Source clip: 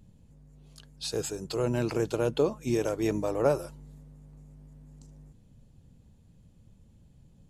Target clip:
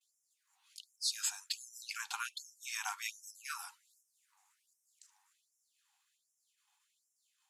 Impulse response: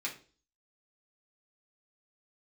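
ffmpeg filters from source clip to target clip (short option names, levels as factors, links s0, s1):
-filter_complex "[0:a]agate=range=0.0224:threshold=0.002:ratio=3:detection=peak,asplit=2[s0][s1];[1:a]atrim=start_sample=2205[s2];[s1][s2]afir=irnorm=-1:irlink=0,volume=0.141[s3];[s0][s3]amix=inputs=2:normalize=0,afftfilt=real='re*gte(b*sr/1024,720*pow(5300/720,0.5+0.5*sin(2*PI*1.3*pts/sr)))':imag='im*gte(b*sr/1024,720*pow(5300/720,0.5+0.5*sin(2*PI*1.3*pts/sr)))':win_size=1024:overlap=0.75,volume=1.19"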